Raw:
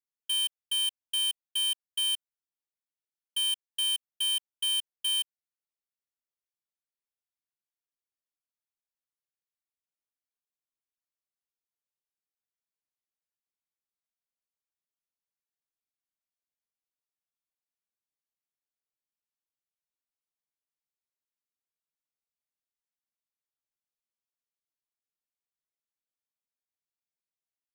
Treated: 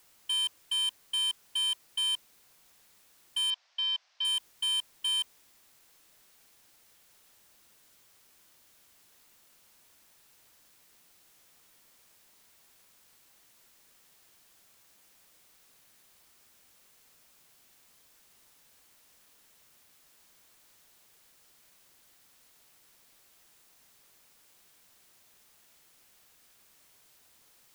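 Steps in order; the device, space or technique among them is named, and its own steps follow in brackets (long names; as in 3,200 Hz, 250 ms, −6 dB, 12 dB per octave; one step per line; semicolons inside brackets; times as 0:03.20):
drive-through speaker (band-pass filter 520–3,000 Hz; parametric band 1,000 Hz +9 dB 0.27 octaves; hard clipping −34.5 dBFS, distortion −12 dB; white noise bed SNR 22 dB)
0:03.50–0:04.25: elliptic band-pass filter 630–5,500 Hz, stop band 40 dB
level +7 dB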